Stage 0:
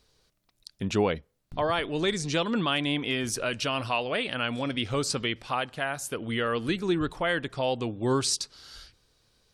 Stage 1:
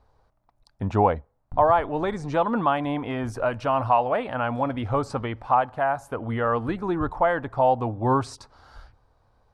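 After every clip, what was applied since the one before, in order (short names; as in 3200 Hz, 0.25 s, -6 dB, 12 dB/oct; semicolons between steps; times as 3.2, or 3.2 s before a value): EQ curve 110 Hz 0 dB, 160 Hz -9 dB, 260 Hz -5 dB, 380 Hz -9 dB, 840 Hz +6 dB, 3000 Hz -21 dB, 6700 Hz -24 dB; gain +8 dB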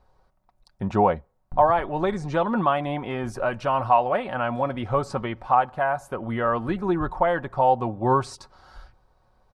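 comb 5.4 ms, depth 46%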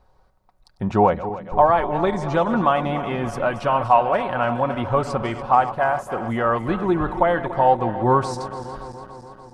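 regenerating reverse delay 0.144 s, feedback 80%, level -13.5 dB; gain +3 dB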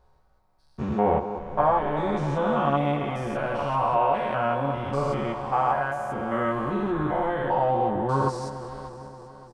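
stepped spectrum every 0.2 s; doubler 14 ms -2 dB; gain -4 dB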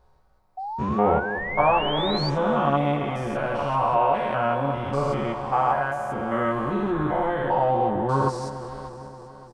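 painted sound rise, 0.57–2.3, 740–4700 Hz -33 dBFS; gain +1.5 dB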